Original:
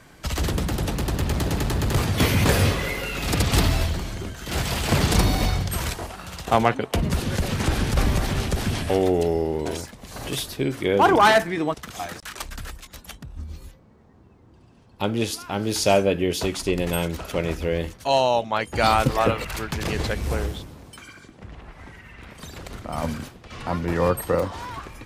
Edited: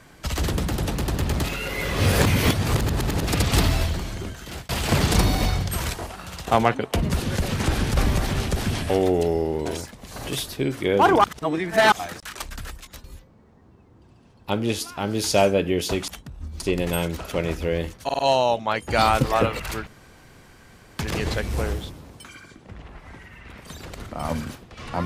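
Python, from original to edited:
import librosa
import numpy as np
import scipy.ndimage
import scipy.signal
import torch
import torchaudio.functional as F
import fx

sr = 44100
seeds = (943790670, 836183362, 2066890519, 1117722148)

y = fx.edit(x, sr, fx.reverse_span(start_s=1.44, length_s=1.83),
    fx.fade_out_span(start_s=4.32, length_s=0.37),
    fx.reverse_span(start_s=11.24, length_s=0.68),
    fx.move(start_s=13.04, length_s=0.52, to_s=16.6),
    fx.stutter(start_s=18.04, slice_s=0.05, count=4),
    fx.insert_room_tone(at_s=19.72, length_s=1.12), tone=tone)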